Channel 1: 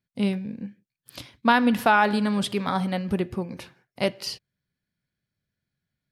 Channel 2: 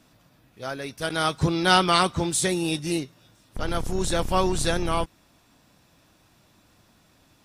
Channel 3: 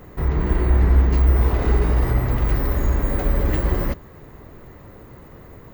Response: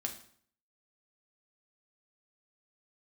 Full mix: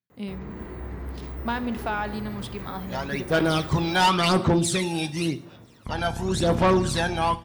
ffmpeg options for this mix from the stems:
-filter_complex "[0:a]volume=0.251,asplit=2[s0][s1];[s1]volume=0.398[s2];[1:a]aphaser=in_gain=1:out_gain=1:delay=1.3:decay=0.67:speed=0.93:type=sinusoidal,highshelf=f=5800:g=-10.5,adelay=2300,volume=0.841,asplit=2[s3][s4];[s4]volume=0.562[s5];[2:a]adelay=100,volume=0.211[s6];[3:a]atrim=start_sample=2205[s7];[s2][s5]amix=inputs=2:normalize=0[s8];[s8][s7]afir=irnorm=-1:irlink=0[s9];[s0][s3][s6][s9]amix=inputs=4:normalize=0,highpass=95,asoftclip=type=tanh:threshold=0.2"

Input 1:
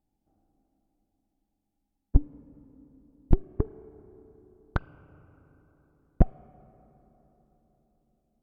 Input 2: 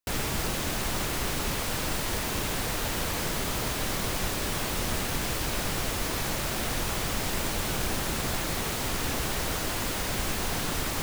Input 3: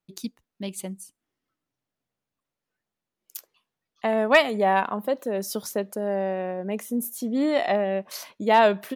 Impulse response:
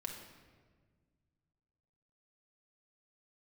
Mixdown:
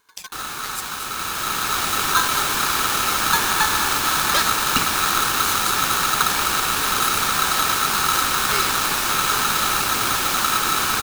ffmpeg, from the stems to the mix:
-filter_complex "[0:a]asplit=2[s0][s1];[s1]highpass=f=720:p=1,volume=79.4,asoftclip=type=tanh:threshold=0.631[s2];[s0][s2]amix=inputs=2:normalize=0,lowpass=f=6900:p=1,volume=0.501,volume=0.531[s3];[1:a]dynaudnorm=f=840:g=3:m=3.35,adelay=250,volume=0.891[s4];[2:a]highshelf=f=2200:t=q:w=1.5:g=13.5,volume=0.335[s5];[s3][s4][s5]amix=inputs=3:normalize=0,asuperstop=centerf=690:order=20:qfactor=2.4,aeval=exprs='val(0)*sgn(sin(2*PI*1300*n/s))':c=same"

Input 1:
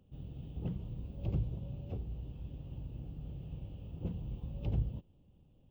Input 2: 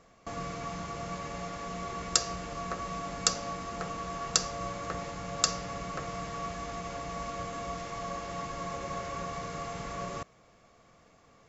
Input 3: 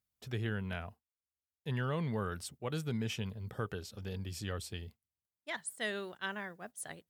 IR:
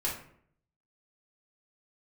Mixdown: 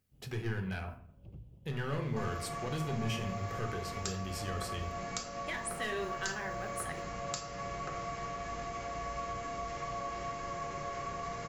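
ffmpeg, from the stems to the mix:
-filter_complex "[0:a]volume=0.15[s0];[1:a]acompressor=threshold=0.00355:ratio=2,adelay=1900,volume=0.944,asplit=2[s1][s2];[s2]volume=0.631[s3];[2:a]asoftclip=type=hard:threshold=0.0282,volume=1.26,asplit=2[s4][s5];[s5]volume=0.355[s6];[s1][s4]amix=inputs=2:normalize=0,equalizer=f=2000:w=1.5:g=4,acompressor=threshold=0.00891:ratio=6,volume=1[s7];[3:a]atrim=start_sample=2205[s8];[s3][s6]amix=inputs=2:normalize=0[s9];[s9][s8]afir=irnorm=-1:irlink=0[s10];[s0][s7][s10]amix=inputs=3:normalize=0,bandreject=f=3600:w=24"

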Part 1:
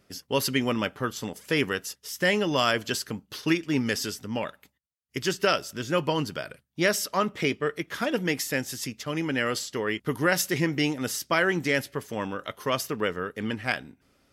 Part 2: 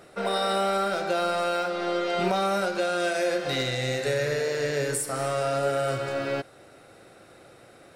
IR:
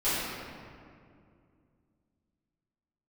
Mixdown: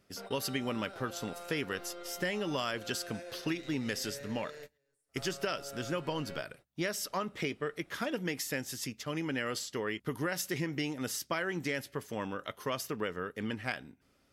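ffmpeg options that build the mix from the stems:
-filter_complex "[0:a]volume=0.562,asplit=2[s0][s1];[1:a]alimiter=limit=0.0841:level=0:latency=1,asubboost=boost=9:cutoff=54,volume=0.158[s2];[s1]apad=whole_len=350867[s3];[s2][s3]sidechaingate=range=0.0224:threshold=0.00178:ratio=16:detection=peak[s4];[s0][s4]amix=inputs=2:normalize=0,acompressor=threshold=0.0316:ratio=6"

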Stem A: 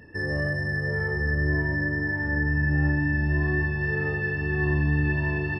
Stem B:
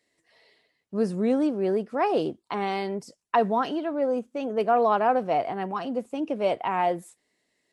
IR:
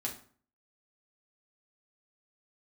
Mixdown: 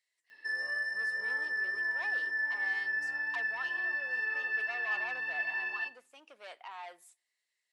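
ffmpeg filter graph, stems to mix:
-filter_complex "[0:a]adelay=300,volume=0.668,asplit=2[s0][s1];[s1]volume=0.376[s2];[1:a]asoftclip=type=tanh:threshold=0.0944,volume=0.335,asplit=2[s3][s4];[s4]volume=0.126[s5];[2:a]atrim=start_sample=2205[s6];[s2][s5]amix=inputs=2:normalize=0[s7];[s7][s6]afir=irnorm=-1:irlink=0[s8];[s0][s3][s8]amix=inputs=3:normalize=0,highpass=1400"

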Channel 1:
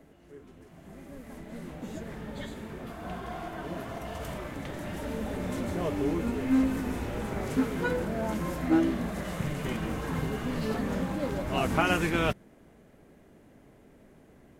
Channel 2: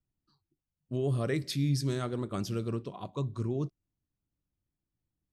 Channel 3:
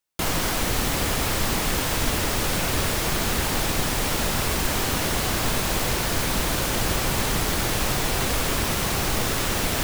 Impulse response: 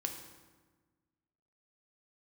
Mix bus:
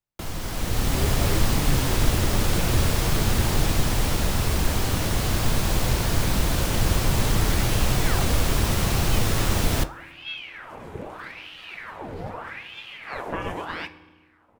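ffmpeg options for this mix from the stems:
-filter_complex "[0:a]aeval=exprs='val(0)*sin(2*PI*1600*n/s+1600*0.85/0.8*sin(2*PI*0.8*n/s))':c=same,adelay=1550,volume=0.2,asplit=2[s0][s1];[s1]volume=0.531[s2];[1:a]volume=0.473[s3];[2:a]acrossover=split=160|3000[s4][s5][s6];[s5]acompressor=threshold=0.0224:ratio=6[s7];[s4][s7][s6]amix=inputs=3:normalize=0,volume=1.06,asplit=2[s8][s9];[s9]volume=0.1[s10];[3:a]atrim=start_sample=2205[s11];[s2][s10]amix=inputs=2:normalize=0[s12];[s12][s11]afir=irnorm=-1:irlink=0[s13];[s0][s3][s8][s13]amix=inputs=4:normalize=0,dynaudnorm=f=130:g=11:m=5.31,flanger=delay=8.5:depth=2.5:regen=-78:speed=0.55:shape=sinusoidal,highshelf=f=2300:g=-10"

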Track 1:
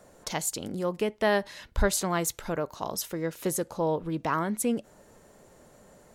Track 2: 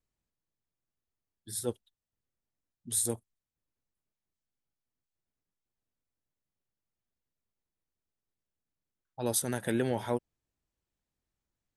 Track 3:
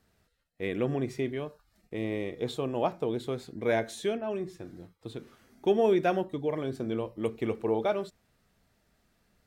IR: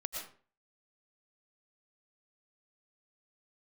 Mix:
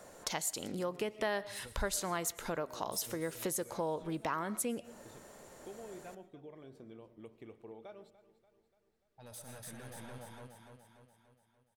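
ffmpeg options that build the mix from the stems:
-filter_complex "[0:a]lowshelf=f=360:g=-7.5,volume=1.33,asplit=3[s0][s1][s2];[s1]volume=0.141[s3];[1:a]equalizer=f=360:t=o:w=1:g=-12,asoftclip=type=tanh:threshold=0.0224,volume=0.473,asplit=3[s4][s5][s6];[s5]volume=0.335[s7];[s6]volume=0.501[s8];[2:a]acompressor=threshold=0.0178:ratio=2.5,volume=0.15,asplit=3[s9][s10][s11];[s10]volume=0.168[s12];[s11]volume=0.178[s13];[s2]apad=whole_len=518669[s14];[s4][s14]sidechaingate=range=0.224:threshold=0.00562:ratio=16:detection=peak[s15];[3:a]atrim=start_sample=2205[s16];[s3][s7][s12]amix=inputs=3:normalize=0[s17];[s17][s16]afir=irnorm=-1:irlink=0[s18];[s8][s13]amix=inputs=2:normalize=0,aecho=0:1:291|582|873|1164|1455|1746|2037|2328:1|0.53|0.281|0.149|0.0789|0.0418|0.0222|0.0117[s19];[s0][s15][s9][s18][s19]amix=inputs=5:normalize=0,acompressor=threshold=0.0141:ratio=2.5"

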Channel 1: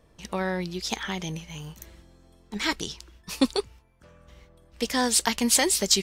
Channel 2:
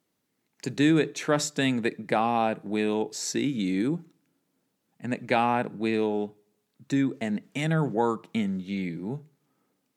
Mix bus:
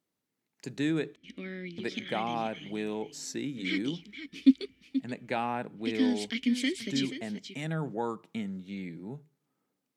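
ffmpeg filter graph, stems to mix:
-filter_complex "[0:a]acontrast=64,asplit=3[s0][s1][s2];[s0]bandpass=f=270:t=q:w=8,volume=1[s3];[s1]bandpass=f=2290:t=q:w=8,volume=0.501[s4];[s2]bandpass=f=3010:t=q:w=8,volume=0.355[s5];[s3][s4][s5]amix=inputs=3:normalize=0,adelay=1050,volume=0.891,asplit=2[s6][s7];[s7]volume=0.282[s8];[1:a]volume=0.398,asplit=3[s9][s10][s11];[s9]atrim=end=1.16,asetpts=PTS-STARTPTS,afade=t=out:st=1.156:d=0.004:c=hsin[s12];[s10]atrim=start=1.16:end=1.78,asetpts=PTS-STARTPTS,volume=0[s13];[s11]atrim=start=1.78,asetpts=PTS-STARTPTS,afade=t=in:d=0.004:c=hsin[s14];[s12][s13][s14]concat=n=3:v=0:a=1[s15];[s8]aecho=0:1:481:1[s16];[s6][s15][s16]amix=inputs=3:normalize=0"

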